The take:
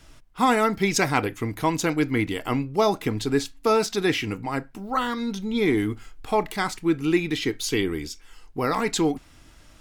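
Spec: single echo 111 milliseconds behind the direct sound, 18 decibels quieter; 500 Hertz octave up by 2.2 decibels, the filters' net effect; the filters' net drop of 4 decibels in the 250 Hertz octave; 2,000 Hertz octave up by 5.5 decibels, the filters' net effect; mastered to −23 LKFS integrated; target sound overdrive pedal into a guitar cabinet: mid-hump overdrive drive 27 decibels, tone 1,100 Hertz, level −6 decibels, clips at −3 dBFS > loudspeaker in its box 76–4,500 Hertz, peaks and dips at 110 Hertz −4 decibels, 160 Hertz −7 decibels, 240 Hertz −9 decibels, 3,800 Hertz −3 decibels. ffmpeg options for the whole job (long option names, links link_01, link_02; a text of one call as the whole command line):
ffmpeg -i in.wav -filter_complex "[0:a]equalizer=frequency=250:width_type=o:gain=-3.5,equalizer=frequency=500:width_type=o:gain=4.5,equalizer=frequency=2000:width_type=o:gain=6.5,aecho=1:1:111:0.126,asplit=2[link_01][link_02];[link_02]highpass=frequency=720:poles=1,volume=27dB,asoftclip=type=tanh:threshold=-3dB[link_03];[link_01][link_03]amix=inputs=2:normalize=0,lowpass=frequency=1100:poles=1,volume=-6dB,highpass=76,equalizer=frequency=110:width_type=q:width=4:gain=-4,equalizer=frequency=160:width_type=q:width=4:gain=-7,equalizer=frequency=240:width_type=q:width=4:gain=-9,equalizer=frequency=3800:width_type=q:width=4:gain=-3,lowpass=frequency=4500:width=0.5412,lowpass=frequency=4500:width=1.3066,volume=-6.5dB" out.wav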